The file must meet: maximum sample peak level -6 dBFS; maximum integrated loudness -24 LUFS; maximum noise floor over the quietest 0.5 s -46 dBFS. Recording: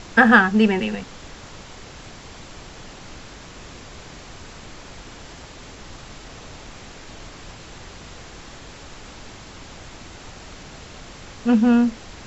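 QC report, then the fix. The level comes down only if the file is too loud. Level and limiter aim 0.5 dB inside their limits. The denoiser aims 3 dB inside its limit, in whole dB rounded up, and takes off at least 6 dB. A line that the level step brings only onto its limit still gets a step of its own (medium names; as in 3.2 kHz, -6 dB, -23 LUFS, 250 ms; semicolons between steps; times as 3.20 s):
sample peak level -2.0 dBFS: fail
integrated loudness -17.5 LUFS: fail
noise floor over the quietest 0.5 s -40 dBFS: fail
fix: trim -7 dB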